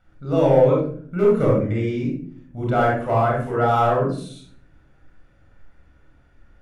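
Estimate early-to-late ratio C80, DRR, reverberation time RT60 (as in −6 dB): 7.0 dB, −3.5 dB, 0.55 s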